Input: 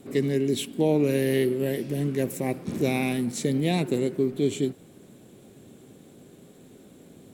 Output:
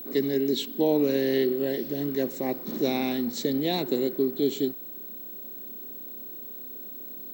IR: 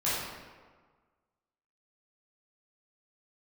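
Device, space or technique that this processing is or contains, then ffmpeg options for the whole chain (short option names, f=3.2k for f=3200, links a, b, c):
old television with a line whistle: -af "highpass=f=170:w=0.5412,highpass=f=170:w=1.3066,equalizer=f=170:t=q:w=4:g=-8,equalizer=f=2.4k:t=q:w=4:g=-9,equalizer=f=4.1k:t=q:w=4:g=7,lowpass=f=6.6k:w=0.5412,lowpass=f=6.6k:w=1.3066,aeval=exprs='val(0)+0.0141*sin(2*PI*15734*n/s)':c=same"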